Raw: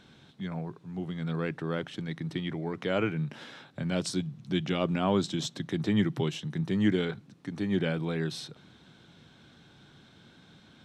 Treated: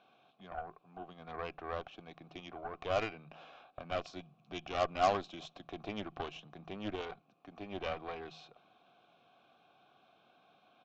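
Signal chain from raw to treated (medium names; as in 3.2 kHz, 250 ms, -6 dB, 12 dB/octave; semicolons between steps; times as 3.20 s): vowel filter a; de-hum 79.37 Hz, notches 2; Chebyshev shaper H 3 -21 dB, 8 -20 dB, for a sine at -25.5 dBFS; resampled via 16 kHz; trim +8.5 dB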